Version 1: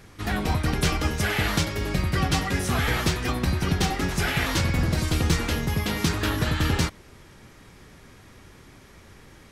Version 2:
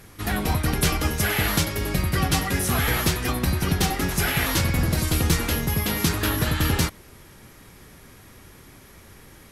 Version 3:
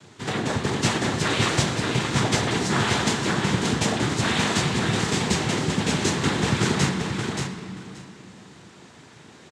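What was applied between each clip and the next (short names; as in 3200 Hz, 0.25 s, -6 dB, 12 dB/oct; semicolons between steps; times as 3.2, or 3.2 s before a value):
bell 12000 Hz +12 dB 0.66 oct; gain +1 dB
noise vocoder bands 6; feedback echo 0.578 s, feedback 16%, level -5 dB; reverb RT60 2.1 s, pre-delay 3 ms, DRR 5.5 dB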